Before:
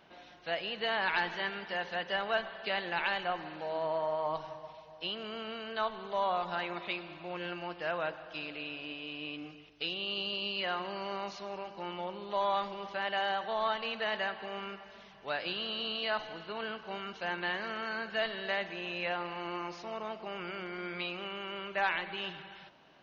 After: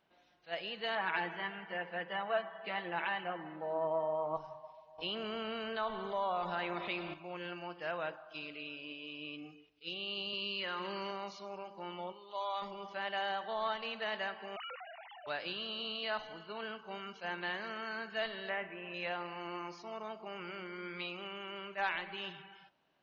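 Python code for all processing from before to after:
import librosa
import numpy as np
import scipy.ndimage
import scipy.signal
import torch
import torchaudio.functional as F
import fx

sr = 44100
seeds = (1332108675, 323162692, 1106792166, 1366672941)

y = fx.chain(x, sr, fx.bandpass_edges(low_hz=130.0, high_hz=2400.0),
    fx.comb(ms=6.1, depth=0.61), at=(0.95, 4.37))
y = fx.chain(y, sr, fx.high_shelf(hz=4400.0, db=-7.5),
    fx.env_flatten(amount_pct=50), at=(4.98, 7.14))
y = fx.chain(y, sr, fx.highpass(hz=140.0, slope=12),
    fx.peak_eq(hz=700.0, db=-12.0, octaves=0.3),
    fx.env_flatten(amount_pct=70), at=(10.33, 11.11))
y = fx.chain(y, sr, fx.highpass(hz=820.0, slope=6),
    fx.peak_eq(hz=1700.0, db=-5.5, octaves=0.57), at=(12.12, 12.62))
y = fx.chain(y, sr, fx.sine_speech(),
    fx.env_flatten(amount_pct=50), at=(14.56, 15.27))
y = fx.chain(y, sr, fx.lowpass(hz=2600.0, slope=24),
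    fx.doubler(ms=38.0, db=-12), at=(18.49, 18.94))
y = fx.noise_reduce_blind(y, sr, reduce_db=11)
y = fx.attack_slew(y, sr, db_per_s=340.0)
y = y * librosa.db_to_amplitude(-4.0)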